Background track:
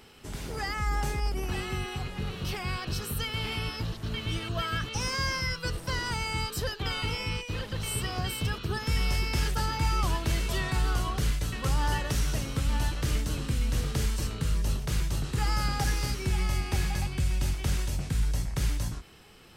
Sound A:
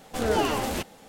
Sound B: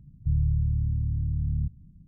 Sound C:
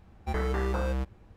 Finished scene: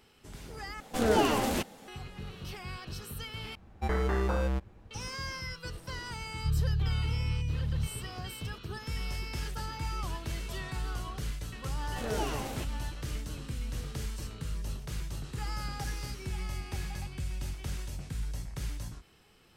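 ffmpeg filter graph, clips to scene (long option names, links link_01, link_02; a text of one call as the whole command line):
ffmpeg -i bed.wav -i cue0.wav -i cue1.wav -i cue2.wav -filter_complex "[1:a]asplit=2[link_01][link_02];[0:a]volume=-8.5dB[link_03];[link_01]equalizer=frequency=230:width_type=o:width=0.77:gain=3[link_04];[link_03]asplit=3[link_05][link_06][link_07];[link_05]atrim=end=0.804[link_08];[link_04]atrim=end=1.08,asetpts=PTS-STARTPTS,volume=-1.5dB[link_09];[link_06]atrim=start=1.876:end=3.554[link_10];[3:a]atrim=end=1.36[link_11];[link_07]atrim=start=4.906[link_12];[2:a]atrim=end=2.07,asetpts=PTS-STARTPTS,volume=-4.5dB,afade=type=in:duration=0.004:curve=hsin,afade=type=out:start_time=2.066:duration=0.004:curve=hsin,adelay=6190[link_13];[link_02]atrim=end=1.08,asetpts=PTS-STARTPTS,volume=-10dB,afade=type=in:duration=0.004:curve=hsin,afade=type=out:start_time=1.076:duration=0.004:curve=hsin,adelay=11820[link_14];[link_08][link_09]acrossfade=duration=0.004:curve1=hsin:curve2=hsin[link_15];[link_15][link_10]acrossfade=duration=0.004:curve1=hsin:curve2=hsin[link_16];[link_16][link_11]acrossfade=duration=0.004:curve1=hsin:curve2=hsin[link_17];[link_17][link_12]acrossfade=duration=0.004:curve1=hsin:curve2=hsin[link_18];[link_18][link_13][link_14]amix=inputs=3:normalize=0" out.wav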